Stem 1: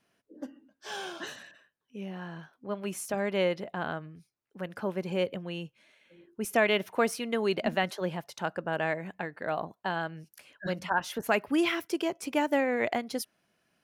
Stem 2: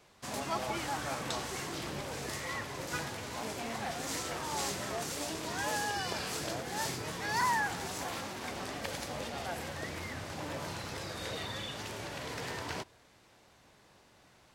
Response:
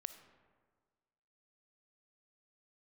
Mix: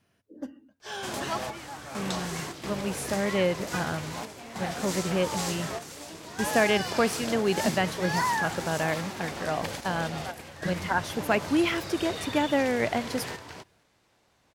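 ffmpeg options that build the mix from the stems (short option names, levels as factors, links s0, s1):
-filter_complex "[0:a]equalizer=f=89:w=1:g=14,volume=1.12,asplit=2[s0][s1];[1:a]acontrast=85,adelay=800,volume=0.631[s2];[s1]apad=whole_len=676501[s3];[s2][s3]sidechaingate=range=0.398:threshold=0.00355:ratio=16:detection=peak[s4];[s0][s4]amix=inputs=2:normalize=0"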